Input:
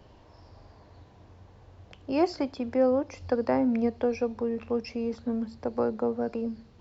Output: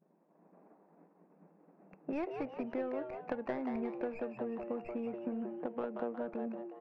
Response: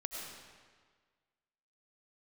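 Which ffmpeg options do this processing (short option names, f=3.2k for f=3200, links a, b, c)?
-filter_complex "[0:a]equalizer=f=250:t=o:w=1:g=-9,equalizer=f=500:t=o:w=1:g=-7,equalizer=f=1k:t=o:w=1:g=-8,equalizer=f=2k:t=o:w=1:g=-4,agate=range=-33dB:threshold=-46dB:ratio=3:detection=peak,afftfilt=real='re*between(b*sr/4096,160,2700)':imag='im*between(b*sr/4096,160,2700)':win_size=4096:overlap=0.75,acrossover=split=1600[a][b];[a]acompressor=threshold=-49dB:ratio=8[c];[b]aeval=exprs='(tanh(316*val(0)+0.55)-tanh(0.55))/316':c=same[d];[c][d]amix=inputs=2:normalize=0,adynamicsmooth=sensitivity=7.5:basefreq=1k,asplit=6[e][f][g][h][i][j];[f]adelay=181,afreqshift=120,volume=-6dB[k];[g]adelay=362,afreqshift=240,volume=-14dB[l];[h]adelay=543,afreqshift=360,volume=-21.9dB[m];[i]adelay=724,afreqshift=480,volume=-29.9dB[n];[j]adelay=905,afreqshift=600,volume=-37.8dB[o];[e][k][l][m][n][o]amix=inputs=6:normalize=0,volume=13dB"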